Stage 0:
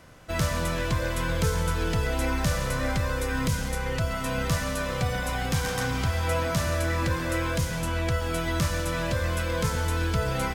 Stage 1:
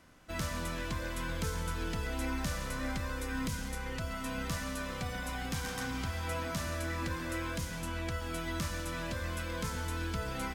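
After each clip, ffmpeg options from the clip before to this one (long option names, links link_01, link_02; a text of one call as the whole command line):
ffmpeg -i in.wav -af "equalizer=frequency=125:width_type=o:width=1:gain=-7,equalizer=frequency=250:width_type=o:width=1:gain=5,equalizer=frequency=500:width_type=o:width=1:gain=-5,volume=-8dB" out.wav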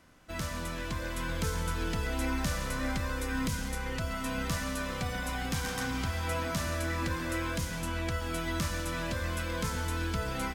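ffmpeg -i in.wav -af "dynaudnorm=framelen=750:gausssize=3:maxgain=3.5dB" out.wav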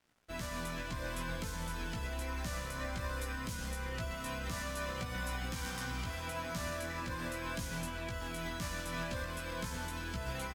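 ffmpeg -i in.wav -filter_complex "[0:a]alimiter=level_in=2.5dB:limit=-24dB:level=0:latency=1:release=132,volume=-2.5dB,aeval=exprs='sgn(val(0))*max(abs(val(0))-0.00141,0)':channel_layout=same,asplit=2[link_01][link_02];[link_02]adelay=17,volume=-4dB[link_03];[link_01][link_03]amix=inputs=2:normalize=0,volume=-3dB" out.wav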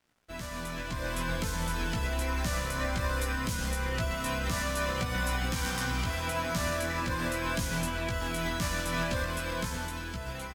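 ffmpeg -i in.wav -af "dynaudnorm=framelen=220:gausssize=9:maxgain=7dB,volume=1dB" out.wav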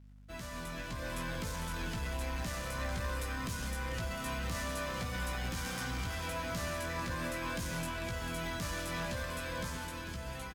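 ffmpeg -i in.wav -af "asoftclip=type=tanh:threshold=-27.5dB,aeval=exprs='val(0)+0.00316*(sin(2*PI*50*n/s)+sin(2*PI*2*50*n/s)/2+sin(2*PI*3*50*n/s)/3+sin(2*PI*4*50*n/s)/4+sin(2*PI*5*50*n/s)/5)':channel_layout=same,aecho=1:1:446:0.316,volume=-4dB" out.wav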